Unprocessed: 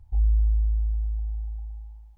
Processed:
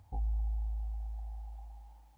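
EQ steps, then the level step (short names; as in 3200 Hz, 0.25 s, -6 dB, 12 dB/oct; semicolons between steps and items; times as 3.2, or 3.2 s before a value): HPF 170 Hz 12 dB/oct; notch 370 Hz, Q 12; +7.5 dB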